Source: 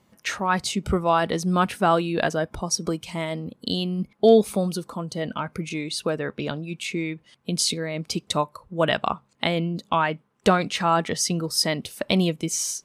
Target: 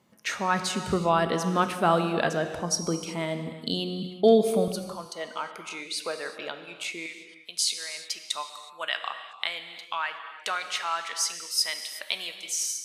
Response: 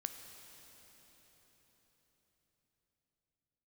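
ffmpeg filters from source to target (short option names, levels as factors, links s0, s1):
-filter_complex "[0:a]asetnsamples=n=441:p=0,asendcmd='4.68 highpass f 620;7.06 highpass f 1400',highpass=120[s0];[1:a]atrim=start_sample=2205,afade=t=out:st=0.43:d=0.01,atrim=end_sample=19404[s1];[s0][s1]afir=irnorm=-1:irlink=0"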